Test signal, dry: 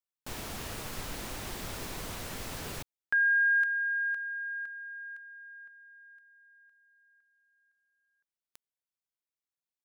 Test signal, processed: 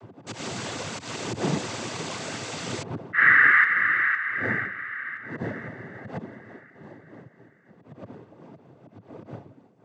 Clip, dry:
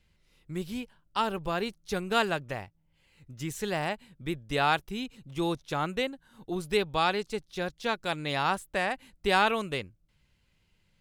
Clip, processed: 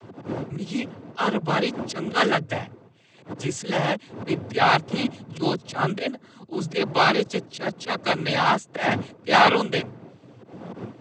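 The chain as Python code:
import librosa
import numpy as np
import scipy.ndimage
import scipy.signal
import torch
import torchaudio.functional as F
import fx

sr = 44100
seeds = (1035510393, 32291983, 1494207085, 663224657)

y = fx.dmg_wind(x, sr, seeds[0], corner_hz=380.0, level_db=-44.0)
y = fx.auto_swell(y, sr, attack_ms=103.0)
y = fx.noise_vocoder(y, sr, seeds[1], bands=16)
y = y * librosa.db_to_amplitude(8.5)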